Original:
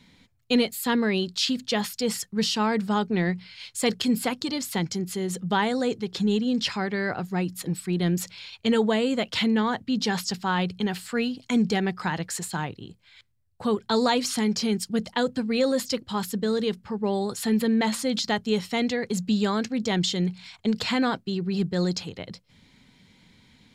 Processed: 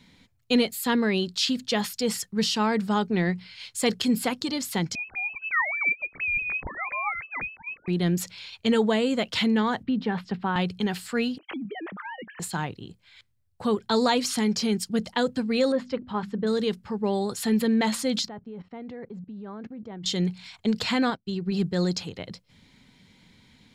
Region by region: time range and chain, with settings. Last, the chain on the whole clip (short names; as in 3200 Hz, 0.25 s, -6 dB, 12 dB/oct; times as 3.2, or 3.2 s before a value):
4.95–7.88 sine-wave speech + HPF 370 Hz + inverted band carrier 2800 Hz
9.83–10.56 air absorption 490 m + three-band squash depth 70%
11.38–12.4 sine-wave speech + compressor 4:1, threshold -34 dBFS
15.72–16.47 LPF 1900 Hz + notches 50/100/150/200/250/300/350 Hz
18.28–20.06 LPF 1200 Hz + level quantiser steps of 19 dB
21.1–21.52 low shelf 81 Hz +11 dB + upward expander 2.5:1, over -38 dBFS
whole clip: dry